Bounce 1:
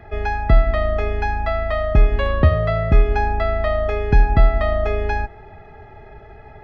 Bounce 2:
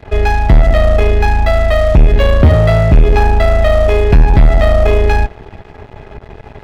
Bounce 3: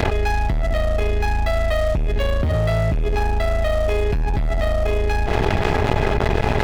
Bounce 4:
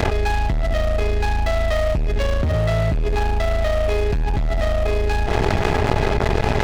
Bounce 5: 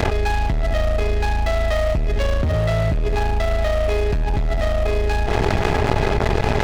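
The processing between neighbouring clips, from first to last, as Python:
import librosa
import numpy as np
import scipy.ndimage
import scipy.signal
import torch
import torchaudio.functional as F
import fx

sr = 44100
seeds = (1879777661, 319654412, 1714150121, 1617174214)

y1 = fx.peak_eq(x, sr, hz=1200.0, db=-10.5, octaves=1.2)
y1 = fx.leveller(y1, sr, passes=3)
y1 = F.gain(torch.from_numpy(y1), 2.5).numpy()
y2 = fx.high_shelf(y1, sr, hz=4300.0, db=7.0)
y2 = fx.env_flatten(y2, sr, amount_pct=100)
y2 = F.gain(torch.from_numpy(y2), -15.5).numpy()
y3 = fx.noise_mod_delay(y2, sr, seeds[0], noise_hz=1700.0, depth_ms=0.03)
y4 = y3 + 10.0 ** (-17.5 / 20.0) * np.pad(y3, (int(421 * sr / 1000.0), 0))[:len(y3)]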